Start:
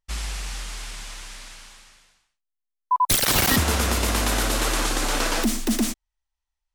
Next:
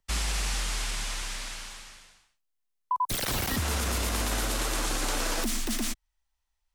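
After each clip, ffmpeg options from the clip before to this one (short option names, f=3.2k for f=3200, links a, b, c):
-filter_complex "[0:a]acrossover=split=110|890|4800[a][b][c][d];[a]acompressor=threshold=-33dB:ratio=4[e];[b]acompressor=threshold=-37dB:ratio=4[f];[c]acompressor=threshold=-37dB:ratio=4[g];[d]acompressor=threshold=-36dB:ratio=4[h];[e][f][g][h]amix=inputs=4:normalize=0,alimiter=limit=-23.5dB:level=0:latency=1:release=28,volume=4dB"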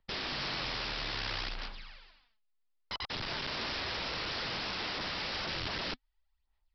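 -af "aphaser=in_gain=1:out_gain=1:delay=4.8:decay=0.61:speed=0.61:type=sinusoidal,aresample=11025,aeval=exprs='(mod(22.4*val(0)+1,2)-1)/22.4':c=same,aresample=44100,volume=-5dB"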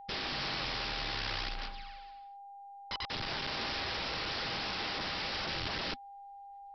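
-af "aeval=exprs='val(0)+0.00447*sin(2*PI*800*n/s)':c=same"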